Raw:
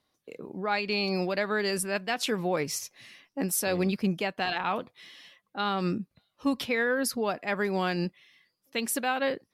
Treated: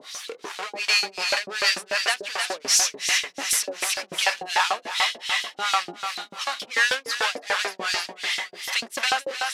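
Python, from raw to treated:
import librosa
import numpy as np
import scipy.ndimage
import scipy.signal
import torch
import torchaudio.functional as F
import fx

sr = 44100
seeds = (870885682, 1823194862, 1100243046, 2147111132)

p1 = fx.over_compress(x, sr, threshold_db=-32.0, ratio=-1.0)
p2 = x + (p1 * librosa.db_to_amplitude(2.0))
p3 = fx.power_curve(p2, sr, exponent=0.35)
p4 = scipy.signal.sosfilt(scipy.signal.butter(2, 7500.0, 'lowpass', fs=sr, output='sos'), p3)
p5 = fx.low_shelf(p4, sr, hz=430.0, db=-9.5)
p6 = p5 + fx.echo_feedback(p5, sr, ms=312, feedback_pct=54, wet_db=-7.0, dry=0)
p7 = fx.harmonic_tremolo(p6, sr, hz=2.7, depth_pct=100, crossover_hz=520.0)
y = fx.filter_lfo_highpass(p7, sr, shape='saw_up', hz=6.8, low_hz=430.0, high_hz=5000.0, q=0.87)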